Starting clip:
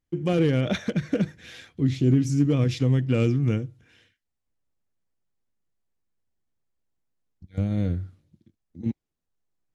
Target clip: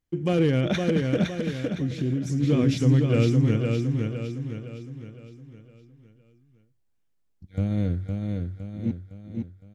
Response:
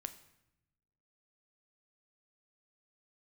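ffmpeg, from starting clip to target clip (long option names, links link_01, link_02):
-filter_complex "[0:a]aecho=1:1:511|1022|1533|2044|2555|3066:0.631|0.29|0.134|0.0614|0.0283|0.013,asplit=3[link_01][link_02][link_03];[link_01]afade=type=out:start_time=1.68:duration=0.02[link_04];[link_02]acompressor=threshold=-26dB:ratio=2.5,afade=type=in:start_time=1.68:duration=0.02,afade=type=out:start_time=2.42:duration=0.02[link_05];[link_03]afade=type=in:start_time=2.42:duration=0.02[link_06];[link_04][link_05][link_06]amix=inputs=3:normalize=0"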